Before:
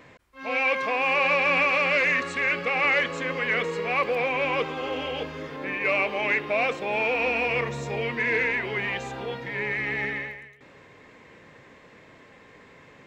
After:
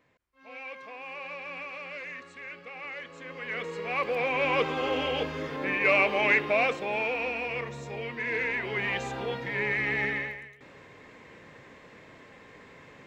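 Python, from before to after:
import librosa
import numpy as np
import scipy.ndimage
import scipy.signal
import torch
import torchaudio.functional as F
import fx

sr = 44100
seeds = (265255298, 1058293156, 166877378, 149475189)

y = fx.gain(x, sr, db=fx.line((2.97, -17.5), (3.67, -7.5), (4.73, 1.5), (6.39, 1.5), (7.38, -7.5), (8.17, -7.5), (9.0, 0.0)))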